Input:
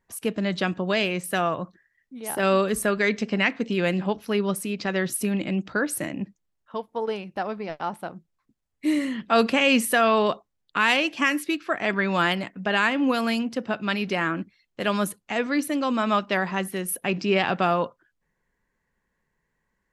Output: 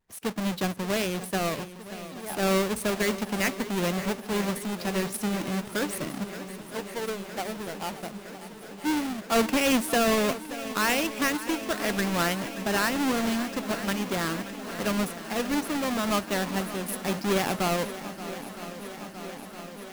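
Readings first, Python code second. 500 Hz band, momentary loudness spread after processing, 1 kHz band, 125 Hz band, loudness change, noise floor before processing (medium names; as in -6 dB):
-3.5 dB, 14 LU, -4.0 dB, -1.5 dB, -3.5 dB, -77 dBFS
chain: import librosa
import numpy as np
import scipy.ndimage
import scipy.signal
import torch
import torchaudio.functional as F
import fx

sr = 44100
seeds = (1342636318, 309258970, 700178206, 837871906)

y = fx.halfwave_hold(x, sr)
y = fx.echo_swing(y, sr, ms=963, ratio=1.5, feedback_pct=74, wet_db=-14.5)
y = y * 10.0 ** (-8.0 / 20.0)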